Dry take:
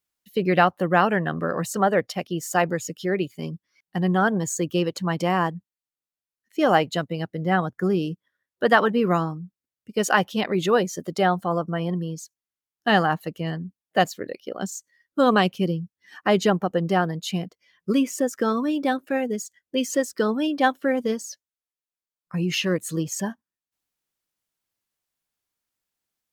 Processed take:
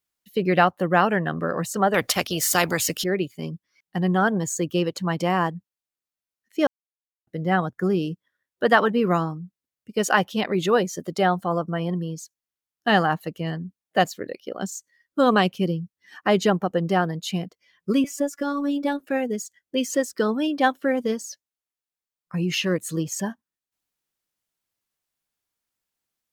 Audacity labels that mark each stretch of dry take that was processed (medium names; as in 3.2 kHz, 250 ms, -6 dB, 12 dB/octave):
1.940000	3.040000	spectrum-flattening compressor 2:1
6.670000	7.270000	mute
18.040000	19.000000	robot voice 285 Hz